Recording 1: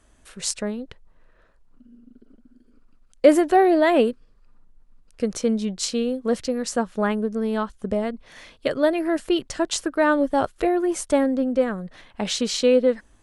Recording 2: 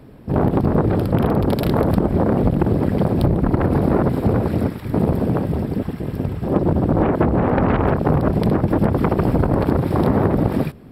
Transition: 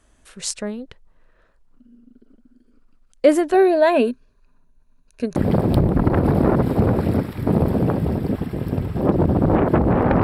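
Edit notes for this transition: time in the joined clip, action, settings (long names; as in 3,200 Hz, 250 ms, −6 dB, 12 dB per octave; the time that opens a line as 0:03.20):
recording 1
0:03.53–0:05.36: EQ curve with evenly spaced ripples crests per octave 1.5, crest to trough 10 dB
0:05.36: continue with recording 2 from 0:02.83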